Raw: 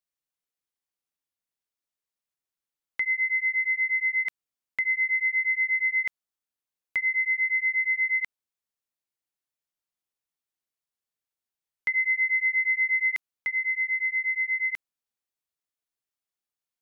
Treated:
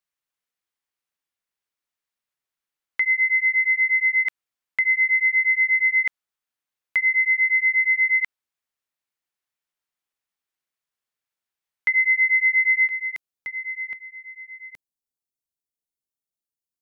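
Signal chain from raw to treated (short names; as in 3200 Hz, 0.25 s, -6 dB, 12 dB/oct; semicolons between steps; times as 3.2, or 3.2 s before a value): bell 1700 Hz +6 dB 2.3 oct, from 12.89 s -3.5 dB, from 13.93 s -13.5 dB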